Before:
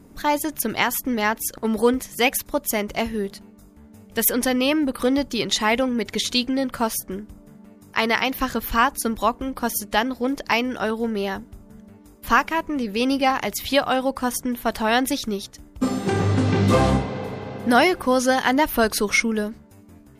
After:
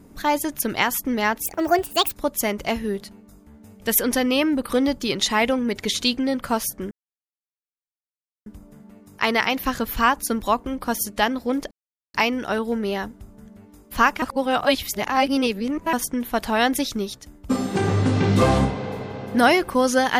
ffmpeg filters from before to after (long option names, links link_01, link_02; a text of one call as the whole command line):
ffmpeg -i in.wav -filter_complex "[0:a]asplit=7[link_01][link_02][link_03][link_04][link_05][link_06][link_07];[link_01]atrim=end=1.464[link_08];[link_02]atrim=start=1.46:end=2.41,asetpts=PTS-STARTPTS,asetrate=64386,aresample=44100,atrim=end_sample=28695,asetpts=PTS-STARTPTS[link_09];[link_03]atrim=start=2.406:end=7.21,asetpts=PTS-STARTPTS,afade=type=out:start_time=4.8:duration=0.004:curve=hsin,apad=pad_dur=1.55[link_10];[link_04]atrim=start=7.21:end=10.46,asetpts=PTS-STARTPTS,afade=type=in:duration=0.004:curve=hsin,afade=type=out:start_time=3.246:duration=0.004:curve=hsin,apad=pad_dur=0.43[link_11];[link_05]atrim=start=10.46:end=12.542,asetpts=PTS-STARTPTS,afade=type=in:duration=0.004:curve=hsin[link_12];[link_06]atrim=start=12.538:end=14.252,asetpts=PTS-STARTPTS,areverse[link_13];[link_07]atrim=start=14.248[link_14];[link_08][link_09]acrossfade=duration=0.004:curve1=hsin:curve2=hsin[link_15];[link_10][link_11][link_12]concat=n=3:v=0:a=1[link_16];[link_15][link_16]acrossfade=duration=0.004:curve1=hsin:curve2=hsin[link_17];[link_17][link_13]acrossfade=duration=0.004:curve1=hsin:curve2=hsin[link_18];[link_18][link_14]acrossfade=duration=0.004:curve1=hsin:curve2=hsin" out.wav